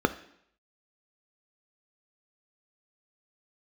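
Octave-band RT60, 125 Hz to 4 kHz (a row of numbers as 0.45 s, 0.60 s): 0.70 s, 0.65 s, 0.70 s, 0.70 s, 0.70 s, 0.70 s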